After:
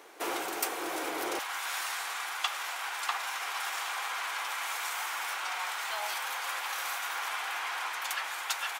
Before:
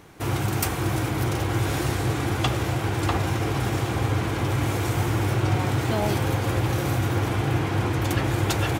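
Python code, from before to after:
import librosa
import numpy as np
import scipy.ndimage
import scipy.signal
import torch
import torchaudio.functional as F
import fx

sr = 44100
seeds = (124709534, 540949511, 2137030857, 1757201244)

y = fx.highpass(x, sr, hz=fx.steps((0.0, 390.0), (1.39, 930.0)), slope=24)
y = fx.rider(y, sr, range_db=10, speed_s=0.5)
y = y * 10.0 ** (-2.0 / 20.0)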